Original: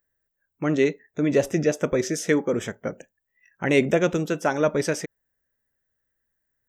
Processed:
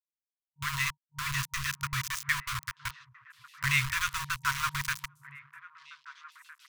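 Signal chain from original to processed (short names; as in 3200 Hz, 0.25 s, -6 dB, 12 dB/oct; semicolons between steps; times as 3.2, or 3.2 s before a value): sample gate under -24.5 dBFS; delay with a stepping band-pass 0.536 s, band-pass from 210 Hz, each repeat 1.4 oct, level -11.5 dB; FFT band-reject 140–940 Hz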